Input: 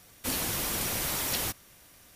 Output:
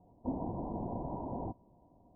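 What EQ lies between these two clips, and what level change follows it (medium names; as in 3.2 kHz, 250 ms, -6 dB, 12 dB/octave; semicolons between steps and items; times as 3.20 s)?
rippled Chebyshev low-pass 1 kHz, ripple 6 dB; +2.5 dB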